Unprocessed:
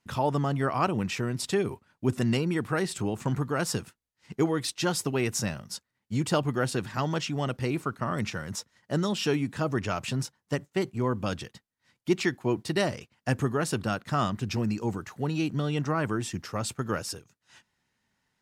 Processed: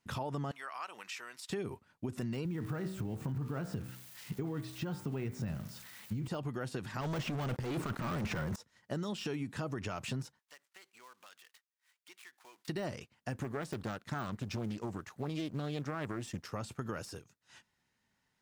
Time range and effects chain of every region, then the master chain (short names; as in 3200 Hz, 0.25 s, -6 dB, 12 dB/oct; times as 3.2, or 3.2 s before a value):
0.51–1.5 HPF 1200 Hz + compressor 2:1, threshold -40 dBFS
2.45–6.28 switching spikes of -27.5 dBFS + tone controls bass +9 dB, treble -10 dB + de-hum 63.35 Hz, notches 38
7.01–8.56 sample leveller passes 5 + negative-ratio compressor -24 dBFS, ratio -0.5
10.39–12.68 switching dead time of 0.092 ms + HPF 1300 Hz + compressor 3:1, threshold -54 dBFS
13.36–16.52 G.711 law mismatch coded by A + Doppler distortion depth 0.42 ms
whole clip: de-esser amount 90%; limiter -20.5 dBFS; compressor, threshold -31 dBFS; gain -3 dB